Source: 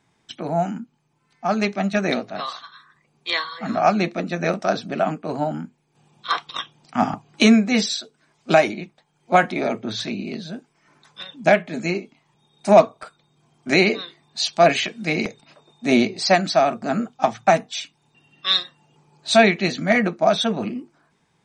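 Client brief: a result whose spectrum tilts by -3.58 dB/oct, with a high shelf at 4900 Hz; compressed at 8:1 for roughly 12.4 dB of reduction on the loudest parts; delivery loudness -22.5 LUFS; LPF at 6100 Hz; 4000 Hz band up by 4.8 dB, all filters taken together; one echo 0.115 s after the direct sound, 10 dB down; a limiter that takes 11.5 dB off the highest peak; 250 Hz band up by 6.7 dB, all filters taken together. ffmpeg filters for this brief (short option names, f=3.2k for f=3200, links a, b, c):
-af "lowpass=6.1k,equalizer=f=250:t=o:g=8,equalizer=f=4k:t=o:g=8.5,highshelf=f=4.9k:g=-6,acompressor=threshold=-15dB:ratio=8,alimiter=limit=-12.5dB:level=0:latency=1,aecho=1:1:115:0.316,volume=1dB"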